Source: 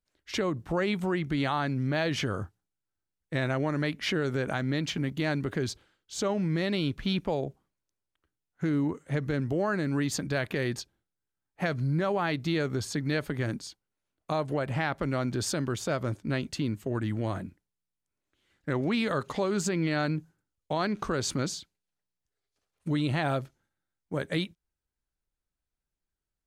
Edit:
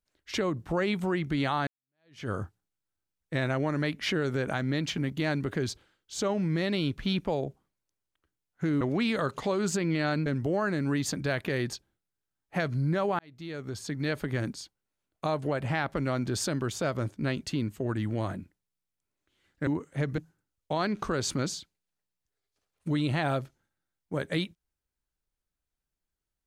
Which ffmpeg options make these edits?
-filter_complex "[0:a]asplit=7[s0][s1][s2][s3][s4][s5][s6];[s0]atrim=end=1.67,asetpts=PTS-STARTPTS,afade=t=out:st=1.666:d=0.004:c=hsin[s7];[s1]atrim=start=1.67:end=8.812,asetpts=PTS-STARTPTS,afade=t=in:d=0.62:c=exp[s8];[s2]atrim=start=18.728:end=20.182[s9];[s3]atrim=start=9.318:end=12.25,asetpts=PTS-STARTPTS,afade=t=out:st=2.928:d=0.004:c=hsin[s10];[s4]atrim=start=12.25:end=18.732,asetpts=PTS-STARTPTS,afade=t=in:d=1.04[s11];[s5]atrim=start=8.808:end=9.322[s12];[s6]atrim=start=20.178[s13];[s7][s8]concat=n=2:v=0:a=1[s14];[s14][s9]acrossfade=d=0.004:c1=hsin:c2=hsin[s15];[s10][s11]concat=n=2:v=0:a=1[s16];[s15][s16]acrossfade=d=0.004:c1=hsin:c2=hsin[s17];[s17][s12]acrossfade=d=0.004:c1=hsin:c2=hsin[s18];[s18][s13]acrossfade=d=0.004:c1=hsin:c2=hsin"

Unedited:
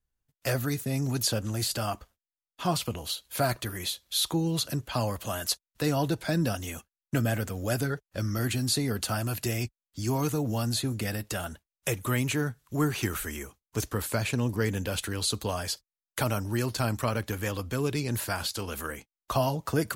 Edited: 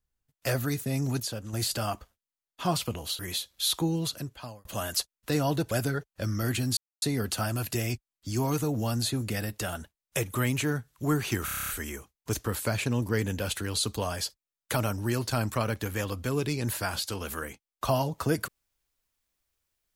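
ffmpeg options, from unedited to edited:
-filter_complex "[0:a]asplit=15[s0][s1][s2][s3][s4][s5][s6][s7][s8][s9][s10][s11][s12][s13][s14];[s0]atrim=end=1.202[s15];[s1]atrim=start=1.198:end=1.532,asetpts=PTS-STARTPTS,volume=0.447[s16];[s2]atrim=start=1.528:end=3.192[s17];[s3]atrim=start=3.708:end=5.17,asetpts=PTS-STARTPTS,afade=t=out:st=0.682:d=0.78[s18];[s4]atrim=start=5.17:end=6.232,asetpts=PTS-STARTPTS,afade=t=in:d=0.004:c=hsin[s19];[s5]atrim=start=7.668:end=8.73,asetpts=PTS-STARTPTS,afade=t=out:st=1.058:d=0.004:c=hsin,apad=pad_dur=0.25[s20];[s6]atrim=start=8.73:end=13.192,asetpts=PTS-STARTPTS,afade=t=in:d=0.004:c=hsin[s21];[s7]atrim=start=13.158:end=13.192[s22];[s8]atrim=start=13.158:end=13.192[s23];[s9]atrim=start=13.158:end=13.192[s24];[s10]atrim=start=13.158:end=13.192[s25];[s11]atrim=start=13.158:end=13.192[s26];[s12]atrim=start=13.158:end=13.192[s27];[s13]atrim=start=13.158:end=13.192[s28];[s14]atrim=start=13.158[s29];[s15][s16]acrossfade=d=0.004:c1=hsin:c2=hsin[s30];[s30][s17]acrossfade=d=0.004:c1=hsin:c2=hsin[s31];[s18][s19]concat=n=2:v=0:a=1[s32];[s31][s32]acrossfade=d=0.004:c1=hsin:c2=hsin[s33];[s20][s21]concat=n=2:v=0:a=1[s34];[s33][s34]acrossfade=d=0.004:c1=hsin:c2=hsin[s35];[s35][s22]acrossfade=d=0.004:c1=hsin:c2=hsin[s36];[s36][s23]acrossfade=d=0.004:c1=hsin:c2=hsin[s37];[s37][s24]acrossfade=d=0.004:c1=hsin:c2=hsin[s38];[s38][s25]acrossfade=d=0.004:c1=hsin:c2=hsin[s39];[s39][s26]acrossfade=d=0.004:c1=hsin:c2=hsin[s40];[s40][s27]acrossfade=d=0.004:c1=hsin:c2=hsin[s41];[s41][s28]acrossfade=d=0.004:c1=hsin:c2=hsin[s42];[s42][s29]acrossfade=d=0.004:c1=hsin:c2=hsin"

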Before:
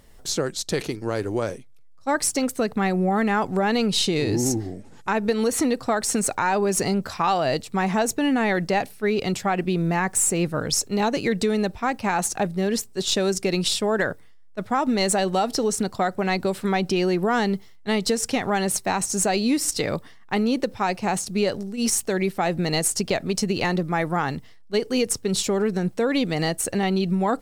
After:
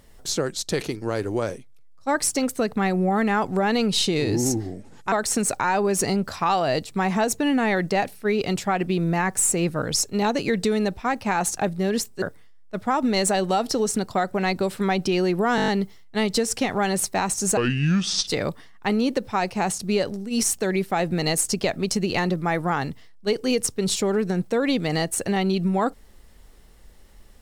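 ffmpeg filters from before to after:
-filter_complex "[0:a]asplit=11[s0][s1][s2][s3][s4][s5][s6][s7][s8][s9][s10];[s0]atrim=end=5.122[s11];[s1]atrim=start=5.898:end=13.002[s12];[s2]atrim=start=14.058:end=17.422[s13];[s3]atrim=start=17.398:end=17.422[s14];[s4]atrim=start=17.398:end=17.422[s15];[s5]atrim=start=17.398:end=17.422[s16];[s6]atrim=start=17.398:end=17.422[s17];[s7]atrim=start=17.398:end=17.422[s18];[s8]atrim=start=17.398:end=19.294[s19];[s9]atrim=start=19.29:end=19.74,asetpts=PTS-STARTPTS,asetrate=28224,aresample=44100[s20];[s10]atrim=start=19.736[s21];[s11][s12]acrossfade=d=0.004:c1=hsin:c2=hsin[s22];[s22][s13]acrossfade=d=0.004:c1=hsin:c2=hsin[s23];[s23][s14]acrossfade=d=0.004:c1=hsin:c2=hsin[s24];[s24][s15]acrossfade=d=0.004:c1=hsin:c2=hsin[s25];[s25][s16]acrossfade=d=0.004:c1=hsin:c2=hsin[s26];[s26][s17]acrossfade=d=0.004:c1=hsin:c2=hsin[s27];[s27][s18]acrossfade=d=0.004:c1=hsin:c2=hsin[s28];[s28][s19]acrossfade=d=0.004:c1=hsin:c2=hsin[s29];[s29][s20]acrossfade=d=0.004:c1=hsin:c2=hsin[s30];[s30][s21]acrossfade=d=0.004:c1=hsin:c2=hsin"

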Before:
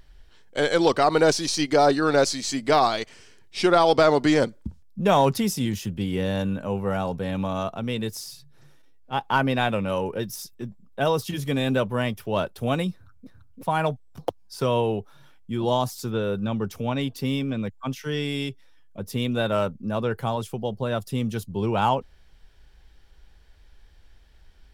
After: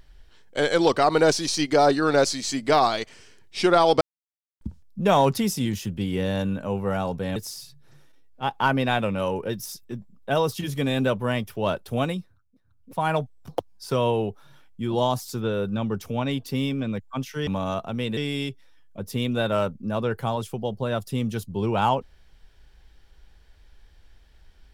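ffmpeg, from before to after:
-filter_complex "[0:a]asplit=8[s0][s1][s2][s3][s4][s5][s6][s7];[s0]atrim=end=4.01,asetpts=PTS-STARTPTS,afade=t=out:st=4.006:d=0.004:c=hsin[s8];[s1]atrim=start=4.01:end=4.61,asetpts=PTS-STARTPTS,volume=0[s9];[s2]atrim=start=4.61:end=7.362,asetpts=PTS-STARTPTS,afade=t=in:d=0.004:c=hsin[s10];[s3]atrim=start=8.058:end=13.12,asetpts=PTS-STARTPTS,afade=t=out:st=4.642:d=0.42:silence=0.133352[s11];[s4]atrim=start=13.12:end=13.35,asetpts=PTS-STARTPTS,volume=0.133[s12];[s5]atrim=start=13.35:end=18.172,asetpts=PTS-STARTPTS,afade=t=in:d=0.42:silence=0.133352[s13];[s6]atrim=start=7.358:end=8.062[s14];[s7]atrim=start=18.168[s15];[s8][s9][s10]concat=n=3:v=0:a=1[s16];[s11][s12][s13]concat=n=3:v=0:a=1[s17];[s16][s17]acrossfade=d=0.004:c1=hsin:c2=hsin[s18];[s18][s14]acrossfade=d=0.004:c1=hsin:c2=hsin[s19];[s19][s15]acrossfade=d=0.004:c1=hsin:c2=hsin"

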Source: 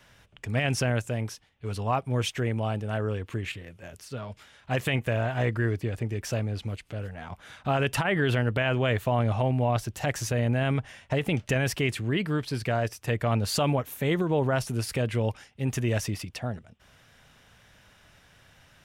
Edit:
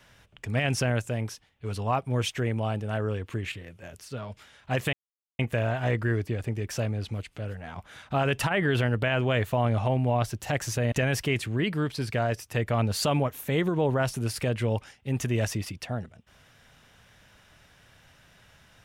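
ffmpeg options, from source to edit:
-filter_complex "[0:a]asplit=3[s0][s1][s2];[s0]atrim=end=4.93,asetpts=PTS-STARTPTS,afade=t=out:st=4.926:d=0.004:c=hsin,apad=pad_dur=0.46[s3];[s1]atrim=start=4.93:end=10.462,asetpts=PTS-STARTPTS,afade=t=in:d=0.004:c=hsin[s4];[s2]atrim=start=11.448[s5];[s3][s4]concat=n=2:v=0:a=1[s6];[s6][s5]acrossfade=d=0.004:c1=hsin:c2=hsin"

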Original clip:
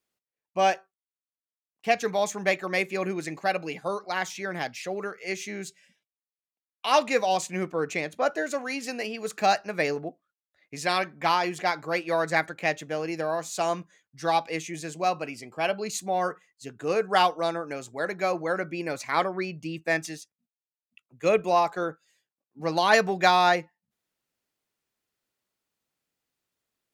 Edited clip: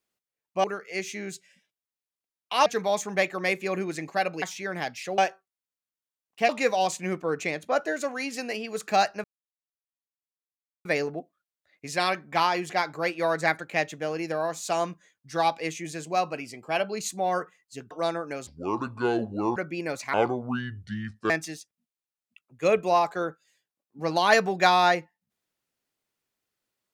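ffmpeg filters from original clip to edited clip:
-filter_complex "[0:a]asplit=12[s0][s1][s2][s3][s4][s5][s6][s7][s8][s9][s10][s11];[s0]atrim=end=0.642[s12];[s1]atrim=start=4.968:end=6.992[s13];[s2]atrim=start=1.948:end=3.712[s14];[s3]atrim=start=4.208:end=4.972[s15];[s4]atrim=start=0.638:end=1.952[s16];[s5]atrim=start=6.988:end=9.74,asetpts=PTS-STARTPTS,afade=t=out:st=2.748:d=0.004:c=hsin,apad=pad_dur=1.61[s17];[s6]atrim=start=9.74:end=16.802,asetpts=PTS-STARTPTS,afade=t=in:d=0.004:c=hsin[s18];[s7]atrim=start=17.308:end=17.874[s19];[s8]atrim=start=17.87:end=18.57,asetpts=PTS-STARTPTS,asetrate=28224,aresample=44100,atrim=end_sample=48234,asetpts=PTS-STARTPTS[s20];[s9]atrim=start=18.566:end=19.144[s21];[s10]atrim=start=19.14:end=19.91,asetpts=PTS-STARTPTS,asetrate=29106,aresample=44100[s22];[s11]atrim=start=19.906[s23];[s12][s13]acrossfade=d=0.004:c1=hsin:c2=hsin[s24];[s24][s14]acrossfade=d=0.004:c1=hsin:c2=hsin[s25];[s25][s15]acrossfade=d=0.004:c1=hsin:c2=hsin[s26];[s26][s16]acrossfade=d=0.004:c1=hsin:c2=hsin[s27];[s17][s18]concat=n=2:v=0:a=1[s28];[s27][s28]acrossfade=d=0.004:c1=hsin:c2=hsin[s29];[s29][s19]acrossfade=d=0.004:c1=hsin:c2=hsin[s30];[s30][s20]acrossfade=d=0.004:c1=hsin:c2=hsin[s31];[s31][s21]acrossfade=d=0.004:c1=hsin:c2=hsin[s32];[s32][s22]acrossfade=d=0.004:c1=hsin:c2=hsin[s33];[s33][s23]acrossfade=d=0.004:c1=hsin:c2=hsin"

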